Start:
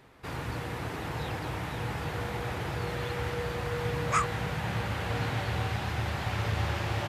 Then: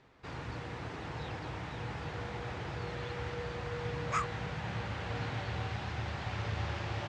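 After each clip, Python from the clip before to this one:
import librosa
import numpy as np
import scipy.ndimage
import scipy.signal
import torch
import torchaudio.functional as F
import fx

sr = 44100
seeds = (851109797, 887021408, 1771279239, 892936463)

y = scipy.signal.sosfilt(scipy.signal.butter(4, 6800.0, 'lowpass', fs=sr, output='sos'), x)
y = y * 10.0 ** (-6.0 / 20.0)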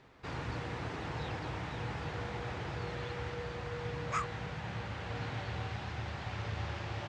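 y = fx.rider(x, sr, range_db=4, speed_s=2.0)
y = y * 10.0 ** (-1.0 / 20.0)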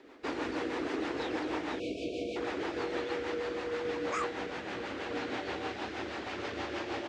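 y = fx.spec_erase(x, sr, start_s=1.79, length_s=0.57, low_hz=720.0, high_hz=2200.0)
y = fx.low_shelf_res(y, sr, hz=200.0, db=-14.0, q=3.0)
y = fx.rotary(y, sr, hz=6.3)
y = y * 10.0 ** (6.5 / 20.0)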